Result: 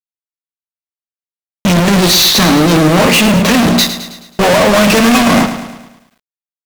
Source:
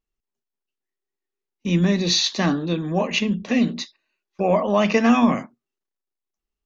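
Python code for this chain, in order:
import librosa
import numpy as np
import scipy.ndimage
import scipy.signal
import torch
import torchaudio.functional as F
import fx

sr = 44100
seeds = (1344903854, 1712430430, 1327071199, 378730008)

y = fx.fuzz(x, sr, gain_db=46.0, gate_db=-46.0)
y = fx.echo_crushed(y, sr, ms=107, feedback_pct=55, bits=8, wet_db=-10.5)
y = y * 10.0 ** (5.0 / 20.0)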